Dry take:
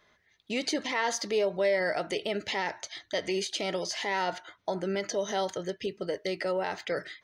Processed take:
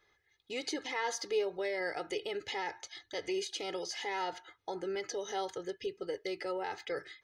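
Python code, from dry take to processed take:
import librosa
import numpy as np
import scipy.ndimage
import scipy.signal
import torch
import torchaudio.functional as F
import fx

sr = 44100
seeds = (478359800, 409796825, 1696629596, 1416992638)

y = x + 0.72 * np.pad(x, (int(2.4 * sr / 1000.0), 0))[:len(x)]
y = y * 10.0 ** (-8.0 / 20.0)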